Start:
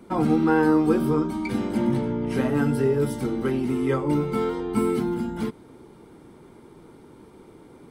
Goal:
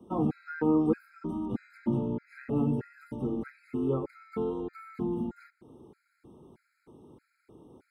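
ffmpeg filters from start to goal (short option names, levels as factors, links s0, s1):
-filter_complex "[0:a]highpass=42,tiltshelf=f=890:g=3.5,acrossover=split=150|1300|2700[s0][s1][s2][s3];[s3]acompressor=threshold=0.001:ratio=12[s4];[s0][s1][s2][s4]amix=inputs=4:normalize=0,afftfilt=real='re*gt(sin(2*PI*1.6*pts/sr)*(1-2*mod(floor(b*sr/1024/1300),2)),0)':imag='im*gt(sin(2*PI*1.6*pts/sr)*(1-2*mod(floor(b*sr/1024/1300),2)),0)':win_size=1024:overlap=0.75,volume=0.422"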